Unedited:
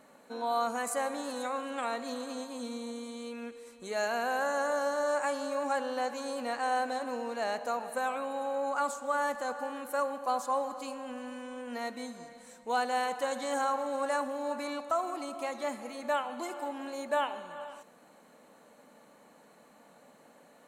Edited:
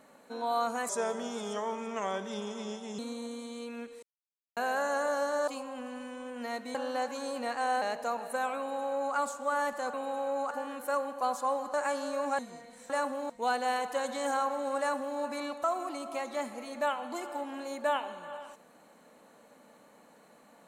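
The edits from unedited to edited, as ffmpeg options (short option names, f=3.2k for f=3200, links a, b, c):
-filter_complex "[0:a]asplit=14[a][b][c][d][e][f][g][h][i][j][k][l][m][n];[a]atrim=end=0.894[o];[b]atrim=start=0.89:end=2.63,asetpts=PTS-STARTPTS,asetrate=36603,aresample=44100[p];[c]atrim=start=2.626:end=3.67,asetpts=PTS-STARTPTS,afade=t=out:st=1.04:d=0.004:c=hsin[q];[d]atrim=start=3.67:end=4.21,asetpts=PTS-STARTPTS,volume=0[r];[e]atrim=start=4.21:end=5.122,asetpts=PTS-STARTPTS,afade=t=in:d=0.004:c=hsin[s];[f]atrim=start=10.788:end=12.062[t];[g]atrim=start=5.768:end=6.842[u];[h]atrim=start=7.438:end=9.562[v];[i]atrim=start=8.208:end=8.782[w];[j]atrim=start=9.558:end=10.792[x];[k]atrim=start=5.118:end=5.772[y];[l]atrim=start=12.058:end=12.572[z];[m]atrim=start=14.058:end=14.462[aa];[n]atrim=start=12.568[ab];[o][p]acrossfade=d=0.004:c1=hsin:c2=hsin[ac];[q][r][s]concat=n=3:v=0:a=1[ad];[ac][ad]acrossfade=d=0.004:c1=hsin:c2=hsin[ae];[ae][t]acrossfade=d=0.004:c1=hsin:c2=hsin[af];[af][u]acrossfade=d=0.004:c1=hsin:c2=hsin[ag];[ag][v]acrossfade=d=0.004:c1=hsin:c2=hsin[ah];[ah][w]acrossfade=d=0.004:c1=hsin:c2=hsin[ai];[ai][x]acrossfade=d=0.004:c1=hsin:c2=hsin[aj];[aj][y]acrossfade=d=0.004:c1=hsin:c2=hsin[ak];[ak][z]acrossfade=d=0.004:c1=hsin:c2=hsin[al];[al][aa]acrossfade=d=0.004:c1=hsin:c2=hsin[am];[am][ab]acrossfade=d=0.004:c1=hsin:c2=hsin"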